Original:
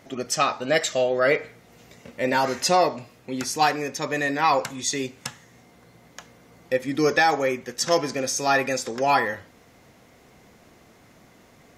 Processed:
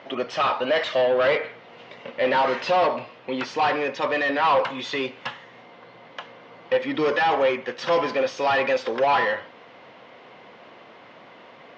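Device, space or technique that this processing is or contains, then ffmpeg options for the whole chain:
overdrive pedal into a guitar cabinet: -filter_complex "[0:a]asplit=2[a][b];[b]highpass=f=720:p=1,volume=24dB,asoftclip=type=tanh:threshold=-7dB[c];[a][c]amix=inputs=2:normalize=0,lowpass=f=2.3k:p=1,volume=-6dB,highpass=110,equalizer=f=120:t=q:w=4:g=3,equalizer=f=540:t=q:w=4:g=5,equalizer=f=1k:t=q:w=4:g=5,equalizer=f=3k:t=q:w=4:g=6,lowpass=f=4.4k:w=0.5412,lowpass=f=4.4k:w=1.3066,volume=-8dB"

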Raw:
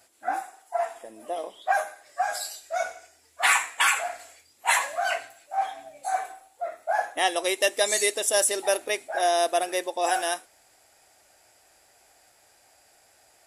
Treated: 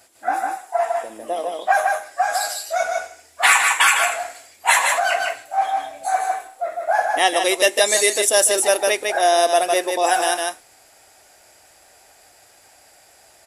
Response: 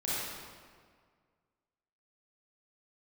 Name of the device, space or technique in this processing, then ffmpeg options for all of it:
ducked delay: -filter_complex "[0:a]asplit=3[a][b][c];[b]adelay=153,volume=-3dB[d];[c]apad=whole_len=600703[e];[d][e]sidechaincompress=threshold=-29dB:ratio=8:attack=23:release=106[f];[a][f]amix=inputs=2:normalize=0,volume=6.5dB"

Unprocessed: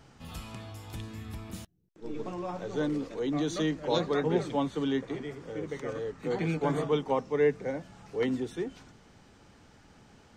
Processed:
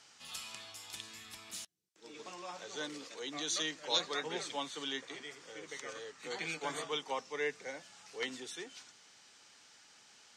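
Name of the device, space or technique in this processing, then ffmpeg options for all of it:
piezo pickup straight into a mixer: -af "lowpass=6.9k,aderivative,volume=11dB"

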